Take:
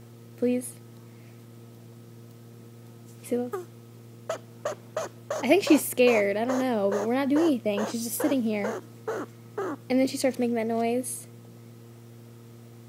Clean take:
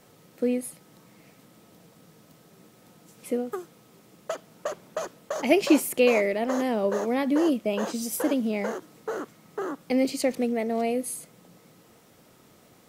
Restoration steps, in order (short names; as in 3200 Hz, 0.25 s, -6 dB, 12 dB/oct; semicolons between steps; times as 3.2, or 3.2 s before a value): de-hum 116.7 Hz, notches 4